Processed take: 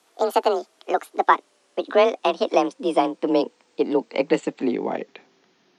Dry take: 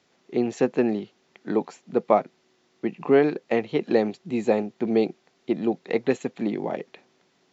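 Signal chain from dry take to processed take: gliding tape speed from 173% -> 87%; frequency shift +34 Hz; peaking EQ 590 Hz -5 dB 0.2 oct; trim +3.5 dB

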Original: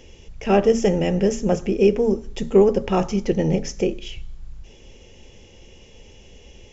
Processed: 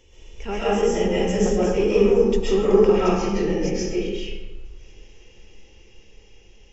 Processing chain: Doppler pass-by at 2.15 s, 10 m/s, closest 9.9 m; graphic EQ with 31 bands 160 Hz -11 dB, 250 Hz -7 dB, 630 Hz -10 dB; in parallel at -2 dB: compression, threshold -30 dBFS, peak gain reduction 17 dB; on the sum: saturation -7 dBFS, distortion -23 dB; algorithmic reverb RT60 1.2 s, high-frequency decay 0.6×, pre-delay 90 ms, DRR -9 dB; trim -6 dB

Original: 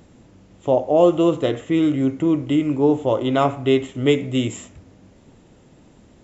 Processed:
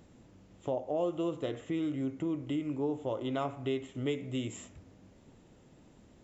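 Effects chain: compression 2:1, threshold -27 dBFS, peak gain reduction 10 dB; trim -8.5 dB

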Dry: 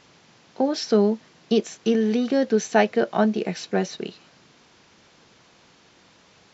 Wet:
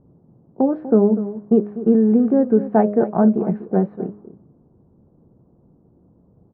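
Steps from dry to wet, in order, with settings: low-pass 1.2 kHz 24 dB/octave; bass shelf 300 Hz +11.5 dB; delay 245 ms -14 dB; level-controlled noise filter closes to 420 Hz, open at -13 dBFS; de-hum 103.3 Hz, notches 6

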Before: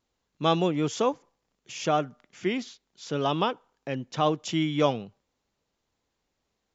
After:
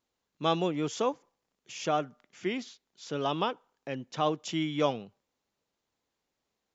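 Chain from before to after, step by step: bass shelf 94 Hz -10.5 dB; trim -3.5 dB

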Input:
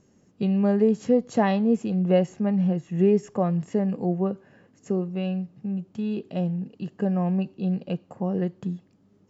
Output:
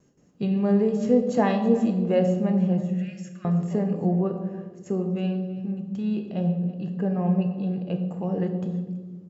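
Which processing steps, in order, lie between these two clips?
delay 327 ms -18.5 dB; gate with hold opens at -51 dBFS; 2.86–3.45 s: elliptic high-pass 1.4 kHz; 6.21–8.08 s: treble shelf 4.6 kHz -7.5 dB; on a send at -5 dB: reverberation RT60 1.3 s, pre-delay 5 ms; on the sum: trim -1.5 dB

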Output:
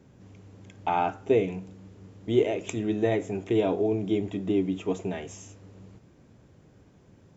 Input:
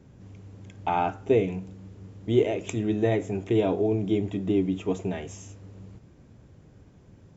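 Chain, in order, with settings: bass shelf 120 Hz -8.5 dB

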